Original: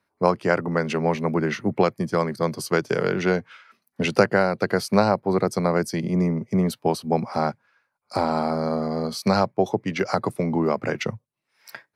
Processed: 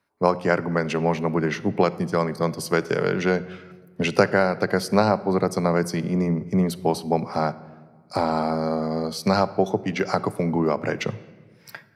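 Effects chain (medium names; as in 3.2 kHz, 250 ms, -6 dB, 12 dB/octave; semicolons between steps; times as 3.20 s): simulated room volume 1500 m³, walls mixed, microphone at 0.31 m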